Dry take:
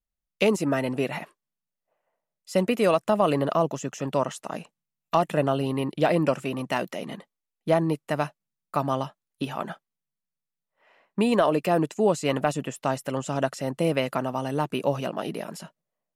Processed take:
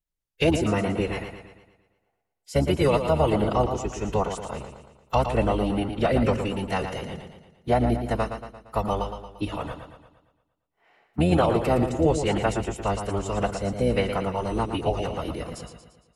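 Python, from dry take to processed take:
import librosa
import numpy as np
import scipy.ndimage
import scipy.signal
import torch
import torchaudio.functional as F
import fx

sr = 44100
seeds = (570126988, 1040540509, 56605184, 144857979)

y = fx.octave_divider(x, sr, octaves=1, level_db=-2.0)
y = fx.pitch_keep_formants(y, sr, semitones=-5.0)
y = fx.echo_warbled(y, sr, ms=115, feedback_pct=51, rate_hz=2.8, cents=50, wet_db=-8)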